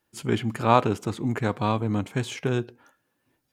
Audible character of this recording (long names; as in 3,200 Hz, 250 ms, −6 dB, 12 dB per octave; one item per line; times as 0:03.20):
background noise floor −76 dBFS
spectral slope −6.0 dB per octave